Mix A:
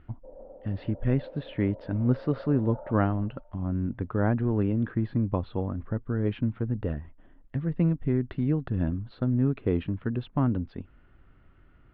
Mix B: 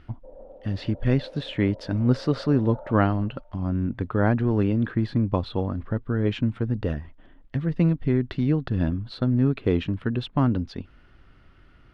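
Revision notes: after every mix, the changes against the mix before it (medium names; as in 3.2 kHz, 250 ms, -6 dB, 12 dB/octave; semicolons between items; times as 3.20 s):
speech +3.0 dB; master: remove distance through air 430 m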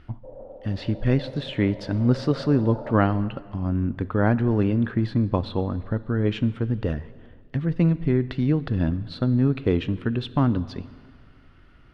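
speech: send on; background +4.0 dB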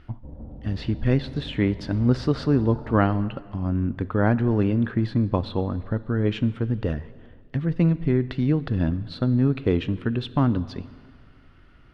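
background: remove resonant high-pass 540 Hz, resonance Q 5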